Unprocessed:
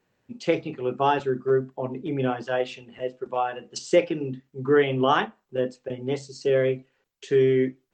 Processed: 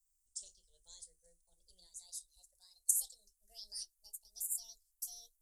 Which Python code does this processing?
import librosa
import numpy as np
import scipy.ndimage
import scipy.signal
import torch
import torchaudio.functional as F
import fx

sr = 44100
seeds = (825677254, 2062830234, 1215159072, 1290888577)

y = fx.speed_glide(x, sr, from_pct=111, to_pct=182)
y = scipy.signal.sosfilt(scipy.signal.cheby2(4, 60, [130.0, 2600.0], 'bandstop', fs=sr, output='sos'), y)
y = y * librosa.db_to_amplitude(8.5)